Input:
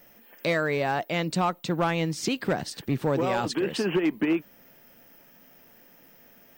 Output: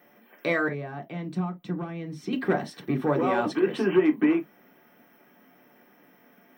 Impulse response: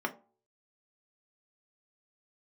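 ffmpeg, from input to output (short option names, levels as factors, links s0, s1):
-filter_complex "[0:a]asettb=1/sr,asplit=3[s0][s1][s2];[s0]atrim=end=0.684[s3];[s1]atrim=start=0.68:end=2.33,asetpts=PTS-STARTPTS,afade=t=in:d=0.004:c=qsin,afade=t=out:st=1.646:d=0.004:c=qsin,acrossover=split=260[s4][s5];[s5]acompressor=threshold=0.0112:ratio=6[s6];[s4][s6]amix=inputs=2:normalize=0[s7];[s2]atrim=start=2.326[s8];[s3][s7]acrossfade=d=0.004:c1=hsin:c2=qsin[s9];[s9][s8]acrossfade=d=0.004:c1=qsin:c2=hsin[s10];[1:a]atrim=start_sample=2205,atrim=end_sample=3087[s11];[s10][s11]afir=irnorm=-1:irlink=0,volume=0.562"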